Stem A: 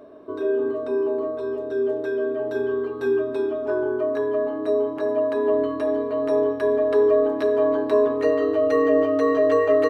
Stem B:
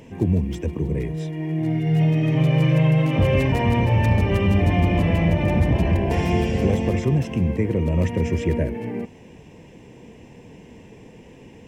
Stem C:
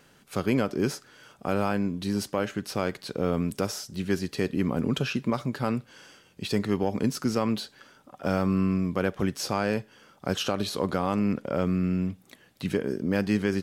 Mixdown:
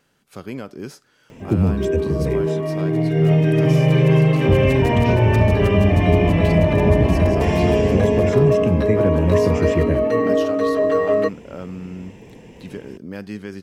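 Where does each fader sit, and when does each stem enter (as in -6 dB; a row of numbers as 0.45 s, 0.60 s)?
+0.5 dB, +2.5 dB, -6.5 dB; 1.40 s, 1.30 s, 0.00 s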